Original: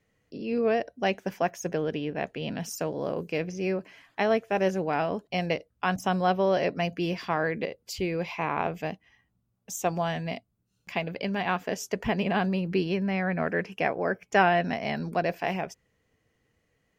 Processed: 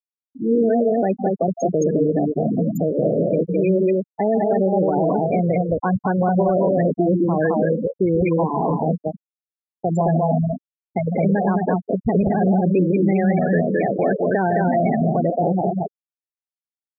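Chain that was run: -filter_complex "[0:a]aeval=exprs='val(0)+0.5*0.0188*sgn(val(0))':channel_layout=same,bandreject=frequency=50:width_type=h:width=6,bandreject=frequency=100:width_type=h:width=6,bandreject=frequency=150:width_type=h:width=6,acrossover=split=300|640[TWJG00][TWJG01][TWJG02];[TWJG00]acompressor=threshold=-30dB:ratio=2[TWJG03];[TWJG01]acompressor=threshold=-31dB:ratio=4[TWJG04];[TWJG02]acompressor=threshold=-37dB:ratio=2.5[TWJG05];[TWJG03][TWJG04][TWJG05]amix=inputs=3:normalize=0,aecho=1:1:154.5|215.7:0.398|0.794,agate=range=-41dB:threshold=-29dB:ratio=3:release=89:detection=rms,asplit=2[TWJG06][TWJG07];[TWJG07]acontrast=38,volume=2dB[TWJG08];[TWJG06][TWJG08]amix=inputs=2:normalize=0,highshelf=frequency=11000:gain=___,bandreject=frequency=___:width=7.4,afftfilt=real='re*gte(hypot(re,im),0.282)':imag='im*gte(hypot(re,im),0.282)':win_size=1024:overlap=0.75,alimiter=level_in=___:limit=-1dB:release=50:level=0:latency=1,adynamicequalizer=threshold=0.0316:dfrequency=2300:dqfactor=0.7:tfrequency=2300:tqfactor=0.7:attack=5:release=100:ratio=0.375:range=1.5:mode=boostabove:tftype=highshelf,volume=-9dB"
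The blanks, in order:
4, 2900, 10dB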